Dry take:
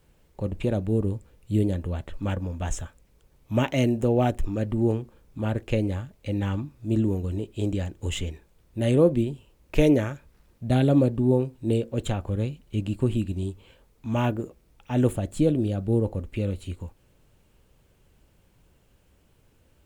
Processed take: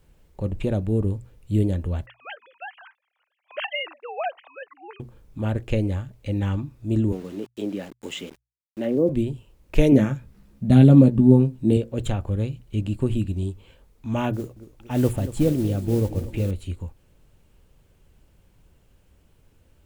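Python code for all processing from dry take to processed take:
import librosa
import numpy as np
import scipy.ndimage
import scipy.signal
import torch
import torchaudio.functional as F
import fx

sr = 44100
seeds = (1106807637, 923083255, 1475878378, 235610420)

y = fx.chain(x, sr, fx.sine_speech(),
    fx.cheby2_highpass(hz=220.0, order=4, stop_db=60),
    fx.high_shelf(hz=2300.0, db=8.5), at=(2.06, 5.0))
y = fx.chain(y, sr, fx.highpass(hz=200.0, slope=24),
    fx.env_lowpass_down(base_hz=510.0, full_db=-19.0),
    fx.sample_gate(floor_db=-44.5), at=(7.12, 9.09))
y = fx.chain(y, sr, fx.peak_eq(hz=200.0, db=12.0, octaves=0.78),
    fx.doubler(ms=15.0, db=-7.0), at=(9.92, 11.77))
y = fx.chain(y, sr, fx.mod_noise(seeds[0], snr_db=23),
    fx.echo_warbled(ms=234, feedback_pct=68, rate_hz=2.8, cents=81, wet_db=-15), at=(14.33, 16.51))
y = fx.low_shelf(y, sr, hz=110.0, db=6.5)
y = fx.hum_notches(y, sr, base_hz=60, count=2)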